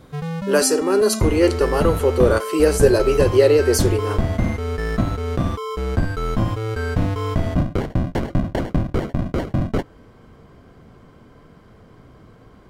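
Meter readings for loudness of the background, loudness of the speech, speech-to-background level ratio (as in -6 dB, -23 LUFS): -23.5 LUFS, -18.0 LUFS, 5.5 dB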